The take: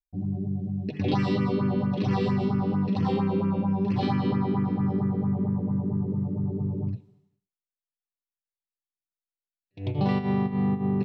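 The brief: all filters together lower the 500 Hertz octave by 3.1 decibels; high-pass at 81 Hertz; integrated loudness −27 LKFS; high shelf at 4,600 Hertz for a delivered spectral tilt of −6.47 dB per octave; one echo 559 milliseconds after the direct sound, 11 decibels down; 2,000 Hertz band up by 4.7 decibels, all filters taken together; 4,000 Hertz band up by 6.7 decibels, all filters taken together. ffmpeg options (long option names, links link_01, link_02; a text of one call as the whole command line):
ffmpeg -i in.wav -af "highpass=81,equalizer=frequency=500:width_type=o:gain=-4.5,equalizer=frequency=2000:width_type=o:gain=3.5,equalizer=frequency=4000:width_type=o:gain=4.5,highshelf=frequency=4600:gain=5.5,aecho=1:1:559:0.282" out.wav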